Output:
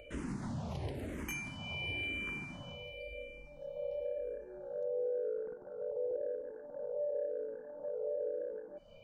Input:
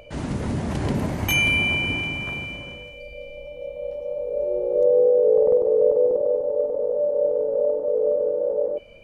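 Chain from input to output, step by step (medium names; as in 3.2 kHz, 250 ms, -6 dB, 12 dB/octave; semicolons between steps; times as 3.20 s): compression 5:1, threshold -28 dBFS, peak gain reduction 13.5 dB; saturation -18.5 dBFS, distortion -29 dB; barber-pole phaser -0.96 Hz; trim -5.5 dB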